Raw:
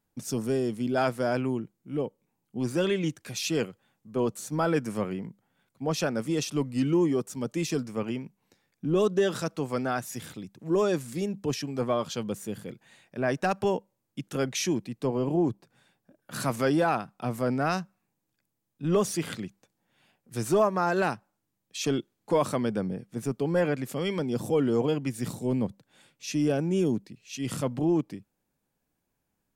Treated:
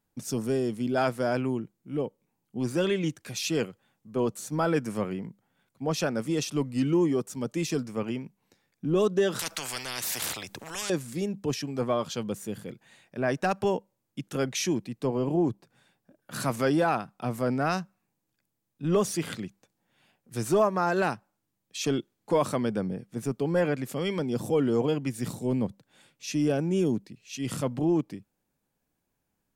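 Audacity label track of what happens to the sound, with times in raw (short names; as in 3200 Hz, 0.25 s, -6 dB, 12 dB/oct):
9.390000	10.900000	spectral compressor 10:1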